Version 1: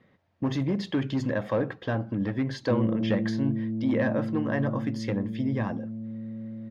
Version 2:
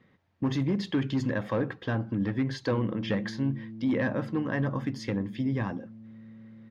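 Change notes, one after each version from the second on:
background −11.0 dB
master: add parametric band 620 Hz −6 dB 0.56 octaves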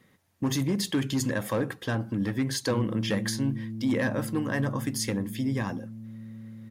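speech: remove high-frequency loss of the air 230 metres
background: remove high-pass filter 310 Hz 6 dB per octave

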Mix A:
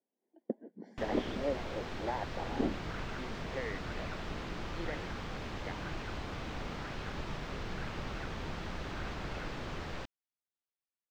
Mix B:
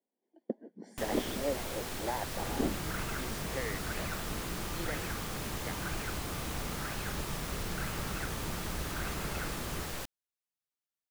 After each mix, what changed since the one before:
speech: remove high-frequency loss of the air 220 metres
first sound: remove high-frequency loss of the air 190 metres
second sound +6.5 dB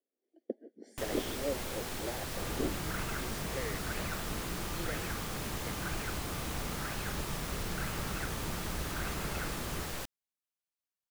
speech: add phaser with its sweep stopped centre 410 Hz, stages 4

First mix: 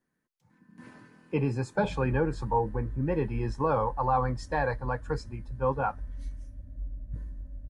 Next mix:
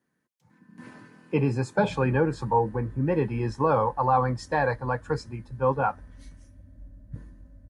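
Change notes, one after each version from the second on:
speech +4.0 dB
master: add high-pass filter 79 Hz 12 dB per octave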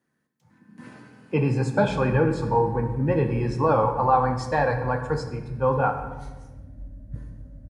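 background +6.5 dB
reverb: on, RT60 1.2 s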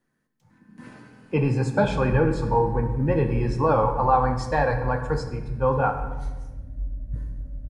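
master: remove high-pass filter 79 Hz 12 dB per octave

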